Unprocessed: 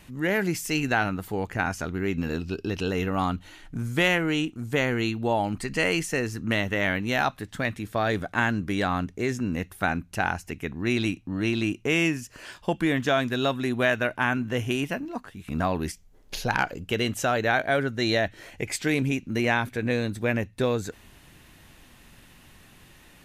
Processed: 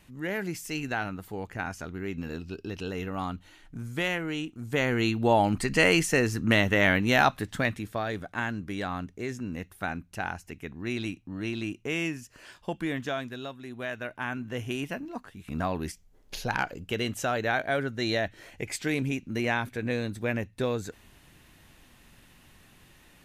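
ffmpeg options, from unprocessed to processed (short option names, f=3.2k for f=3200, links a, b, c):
-af "volume=15dB,afade=t=in:st=4.49:d=0.87:silence=0.316228,afade=t=out:st=7.42:d=0.64:silence=0.316228,afade=t=out:st=12.95:d=0.62:silence=0.354813,afade=t=in:st=13.57:d=1.55:silence=0.251189"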